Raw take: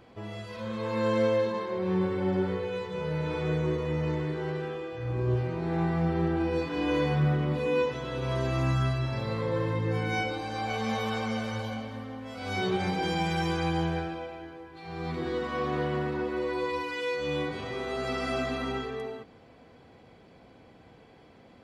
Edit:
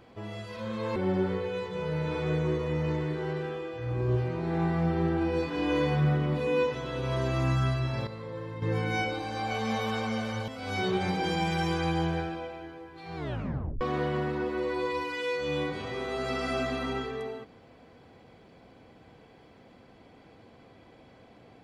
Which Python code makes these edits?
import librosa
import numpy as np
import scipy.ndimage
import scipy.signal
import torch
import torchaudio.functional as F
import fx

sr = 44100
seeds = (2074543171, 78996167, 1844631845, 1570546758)

y = fx.edit(x, sr, fx.cut(start_s=0.96, length_s=1.19),
    fx.clip_gain(start_s=9.26, length_s=0.55, db=-9.5),
    fx.cut(start_s=11.67, length_s=0.6),
    fx.tape_stop(start_s=14.95, length_s=0.65), tone=tone)